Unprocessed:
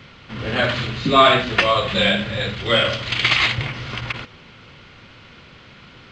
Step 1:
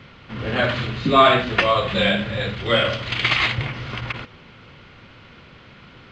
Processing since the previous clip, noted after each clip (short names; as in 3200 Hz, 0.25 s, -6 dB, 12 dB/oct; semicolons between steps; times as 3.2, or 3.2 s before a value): high shelf 4000 Hz -8.5 dB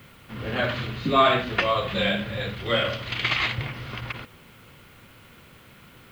added noise blue -56 dBFS; gain -5 dB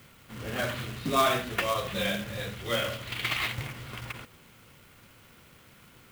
companded quantiser 4-bit; gain -6 dB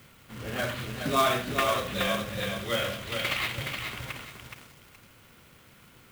lo-fi delay 0.421 s, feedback 35%, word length 8-bit, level -5 dB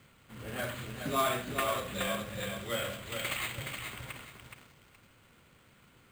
careless resampling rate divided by 4×, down filtered, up hold; gain -5.5 dB